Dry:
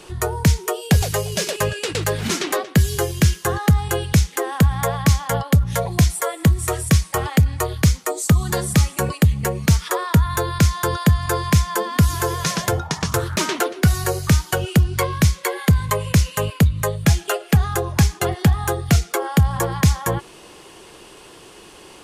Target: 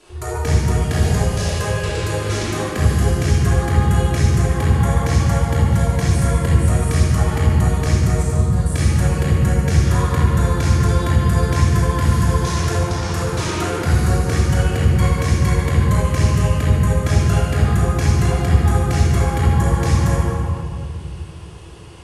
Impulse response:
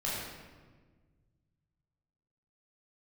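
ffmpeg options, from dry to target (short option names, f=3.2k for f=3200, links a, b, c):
-filter_complex "[0:a]asettb=1/sr,asplit=3[a][b][c];[a]atrim=end=8.234[d];[b]atrim=start=8.23:end=8.66,asetpts=PTS-STARTPTS,afade=t=in:d=0.004:c=qsin,afade=t=out:st=0.426:d=0.004:c=qsin,agate=range=-33dB:threshold=-13dB:ratio=3:detection=peak[e];[c]atrim=start=8.656[f];[d][e]acrossfade=d=0.004:c1=hsin:c2=qsin[g];[g][f]acrossfade=d=0.004:c1=qsin:c2=hsin[h];[1:a]atrim=start_sample=2205,asetrate=23814,aresample=44100[i];[h][i]afir=irnorm=-1:irlink=0,volume=-11dB"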